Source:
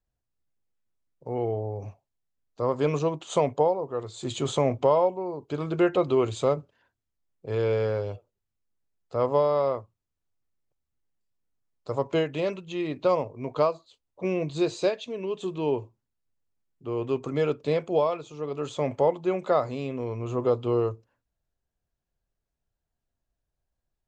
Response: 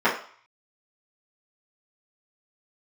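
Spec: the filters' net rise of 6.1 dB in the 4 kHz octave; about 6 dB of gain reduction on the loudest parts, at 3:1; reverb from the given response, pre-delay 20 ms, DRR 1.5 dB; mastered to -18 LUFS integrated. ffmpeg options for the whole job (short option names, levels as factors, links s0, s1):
-filter_complex "[0:a]equalizer=f=4000:t=o:g=7.5,acompressor=threshold=0.0562:ratio=3,asplit=2[s0][s1];[1:a]atrim=start_sample=2205,adelay=20[s2];[s1][s2]afir=irnorm=-1:irlink=0,volume=0.0944[s3];[s0][s3]amix=inputs=2:normalize=0,volume=3.35"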